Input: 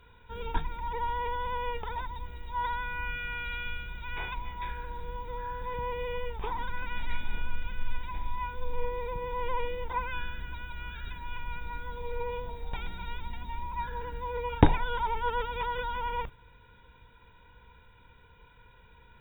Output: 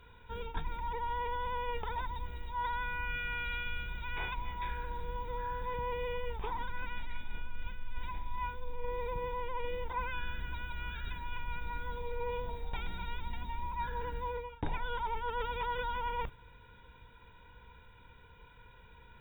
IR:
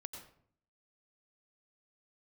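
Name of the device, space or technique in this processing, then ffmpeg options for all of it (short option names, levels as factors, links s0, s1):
compression on the reversed sound: -af "areverse,acompressor=threshold=0.0282:ratio=16,areverse"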